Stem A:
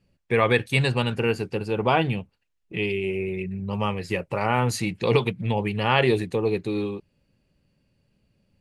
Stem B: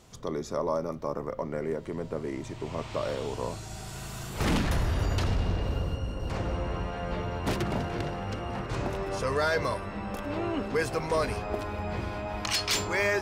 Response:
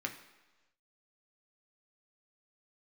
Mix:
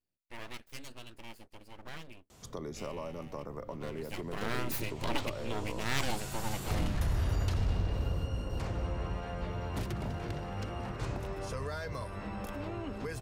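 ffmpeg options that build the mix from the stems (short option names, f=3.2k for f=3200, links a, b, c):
-filter_complex "[0:a]highshelf=f=4.8k:g=8.5,aeval=exprs='abs(val(0))':c=same,volume=-11dB,afade=t=in:st=3.8:d=0.61:silence=0.251189[a];[1:a]acrossover=split=140[b][c];[c]acompressor=threshold=-36dB:ratio=6[d];[b][d]amix=inputs=2:normalize=0,adelay=2300,volume=-2dB[e];[a][e]amix=inputs=2:normalize=0,highshelf=f=10k:g=7.5"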